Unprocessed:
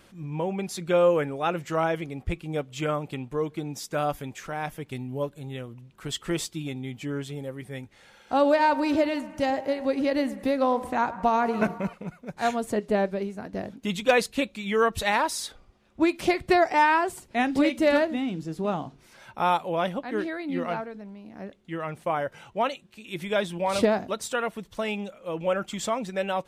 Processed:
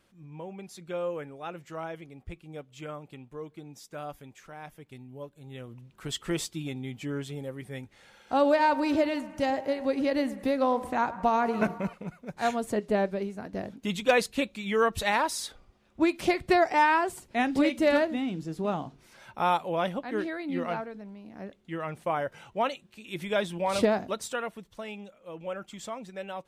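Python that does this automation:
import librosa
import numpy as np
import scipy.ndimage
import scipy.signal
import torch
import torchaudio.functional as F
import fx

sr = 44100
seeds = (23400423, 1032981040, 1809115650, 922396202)

y = fx.gain(x, sr, db=fx.line((5.33, -12.0), (5.75, -2.0), (24.13, -2.0), (24.84, -10.0)))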